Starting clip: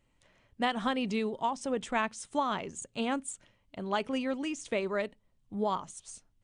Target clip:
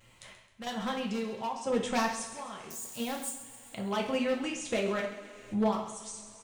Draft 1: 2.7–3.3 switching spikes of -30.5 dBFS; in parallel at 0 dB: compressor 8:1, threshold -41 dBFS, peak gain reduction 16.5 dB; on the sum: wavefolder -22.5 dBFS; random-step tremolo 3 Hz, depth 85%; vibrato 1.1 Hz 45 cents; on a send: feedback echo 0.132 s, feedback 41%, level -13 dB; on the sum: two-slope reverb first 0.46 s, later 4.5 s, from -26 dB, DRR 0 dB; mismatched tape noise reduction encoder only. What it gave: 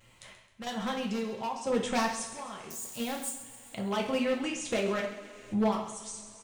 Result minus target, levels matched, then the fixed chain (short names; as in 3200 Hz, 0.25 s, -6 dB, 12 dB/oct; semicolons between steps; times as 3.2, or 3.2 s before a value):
compressor: peak gain reduction -7 dB
2.7–3.3 switching spikes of -30.5 dBFS; in parallel at 0 dB: compressor 8:1, threshold -49 dBFS, peak gain reduction 23.5 dB; on the sum: wavefolder -22.5 dBFS; random-step tremolo 3 Hz, depth 85%; vibrato 1.1 Hz 45 cents; on a send: feedback echo 0.132 s, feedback 41%, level -13 dB; on the sum: two-slope reverb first 0.46 s, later 4.5 s, from -26 dB, DRR 0 dB; mismatched tape noise reduction encoder only